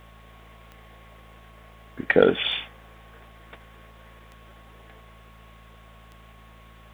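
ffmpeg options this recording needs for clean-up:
-af "adeclick=t=4,bandreject=f=55.3:t=h:w=4,bandreject=f=110.6:t=h:w=4,bandreject=f=165.9:t=h:w=4,bandreject=f=221.2:t=h:w=4,bandreject=f=1.1k:w=30"

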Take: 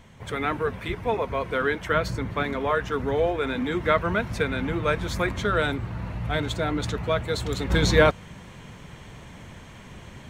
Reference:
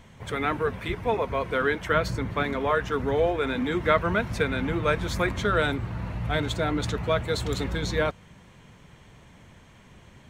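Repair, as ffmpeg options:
-af "asetnsamples=n=441:p=0,asendcmd='7.7 volume volume -8dB',volume=0dB"

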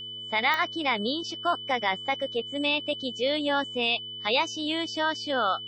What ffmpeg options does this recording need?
-af "adeclick=t=4,bandreject=f=112.6:t=h:w=4,bandreject=f=225.2:t=h:w=4,bandreject=f=337.8:t=h:w=4,bandreject=f=450.4:t=h:w=4,bandreject=f=3k:w=30"

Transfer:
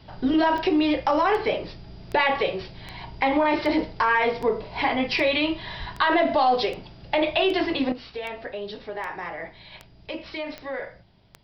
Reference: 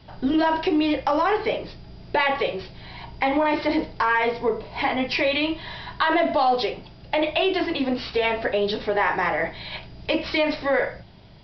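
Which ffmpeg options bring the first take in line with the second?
-filter_complex "[0:a]adeclick=t=4,asplit=3[a][b][c];[a]afade=t=out:st=5.79:d=0.02[d];[b]highpass=f=140:w=0.5412,highpass=f=140:w=1.3066,afade=t=in:st=5.79:d=0.02,afade=t=out:st=5.91:d=0.02[e];[c]afade=t=in:st=5.91:d=0.02[f];[d][e][f]amix=inputs=3:normalize=0,asetnsamples=n=441:p=0,asendcmd='7.92 volume volume 10.5dB',volume=0dB"

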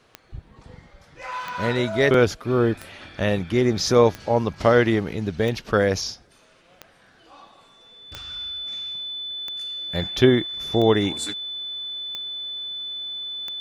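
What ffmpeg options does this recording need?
-af "adeclick=t=4,bandreject=f=3.5k:w=30"

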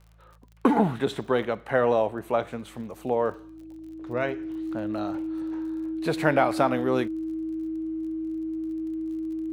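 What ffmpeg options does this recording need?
-af "adeclick=t=4,bandreject=f=54.8:t=h:w=4,bandreject=f=109.6:t=h:w=4,bandreject=f=164.4:t=h:w=4,bandreject=f=320:w=30"

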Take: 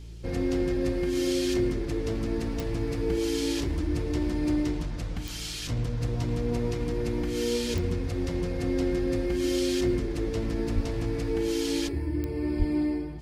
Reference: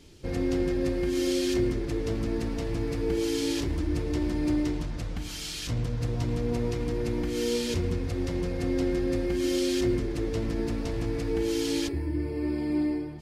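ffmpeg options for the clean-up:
-filter_complex "[0:a]adeclick=t=4,bandreject=f=56.3:t=h:w=4,bandreject=f=112.6:t=h:w=4,bandreject=f=168.9:t=h:w=4,asplit=3[a][b][c];[a]afade=t=out:st=10.74:d=0.02[d];[b]highpass=f=140:w=0.5412,highpass=f=140:w=1.3066,afade=t=in:st=10.74:d=0.02,afade=t=out:st=10.86:d=0.02[e];[c]afade=t=in:st=10.86:d=0.02[f];[d][e][f]amix=inputs=3:normalize=0,asplit=3[g][h][i];[g]afade=t=out:st=12.58:d=0.02[j];[h]highpass=f=140:w=0.5412,highpass=f=140:w=1.3066,afade=t=in:st=12.58:d=0.02,afade=t=out:st=12.7:d=0.02[k];[i]afade=t=in:st=12.7:d=0.02[l];[j][k][l]amix=inputs=3:normalize=0"

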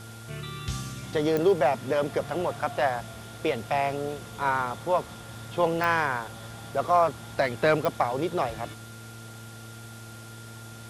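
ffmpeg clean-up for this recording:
-af "adeclick=t=4,bandreject=f=112.7:t=h:w=4,bandreject=f=225.4:t=h:w=4,bandreject=f=338.1:t=h:w=4,bandreject=f=450.8:t=h:w=4,bandreject=f=1.4k:w=30,afwtdn=0.0035"

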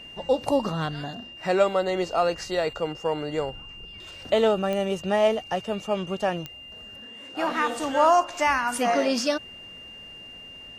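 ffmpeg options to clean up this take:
-af "adeclick=t=4,bandreject=f=2.8k:w=30"

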